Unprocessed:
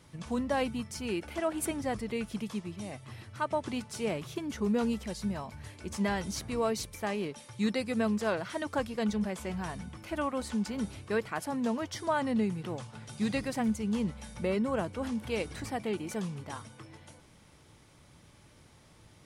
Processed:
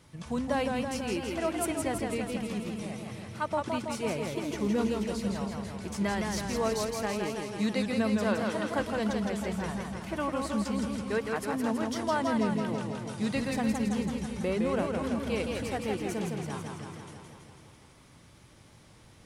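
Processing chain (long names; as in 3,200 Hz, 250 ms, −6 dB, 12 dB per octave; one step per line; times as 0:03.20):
feedback echo with a swinging delay time 164 ms, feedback 68%, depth 110 cents, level −4 dB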